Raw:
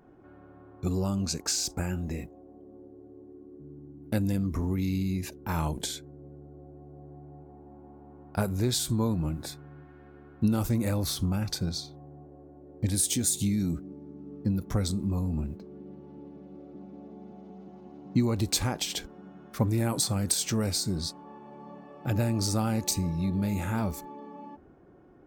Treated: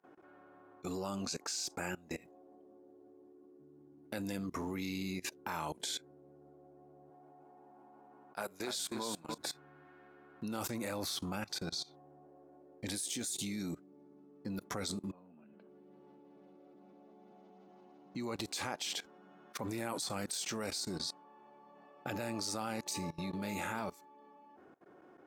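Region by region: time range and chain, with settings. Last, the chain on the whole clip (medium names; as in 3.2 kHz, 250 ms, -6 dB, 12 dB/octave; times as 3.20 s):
7.10–9.38 s: high-pass 330 Hz 6 dB/octave + hum notches 60/120/180/240/300/360/420/480/540/600 Hz + feedback delay 291 ms, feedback 27%, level -10 dB
15.11–15.69 s: compression 2.5:1, threshold -32 dBFS + cabinet simulation 180–3000 Hz, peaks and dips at 210 Hz +8 dB, 600 Hz +5 dB, 1.5 kHz +7 dB, 2.9 kHz +8 dB
whole clip: frequency weighting A; level held to a coarse grid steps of 21 dB; trim +3.5 dB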